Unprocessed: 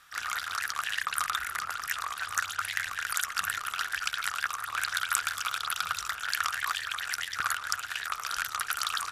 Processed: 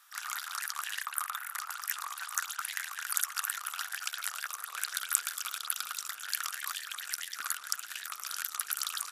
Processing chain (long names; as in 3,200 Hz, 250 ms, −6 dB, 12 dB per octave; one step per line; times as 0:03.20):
RIAA equalisation recording
high-pass filter sweep 870 Hz → 240 Hz, 0:03.67–0:05.81
0:01.07–0:01.55: parametric band 5,500 Hz −8.5 dB 1.6 octaves
level −11 dB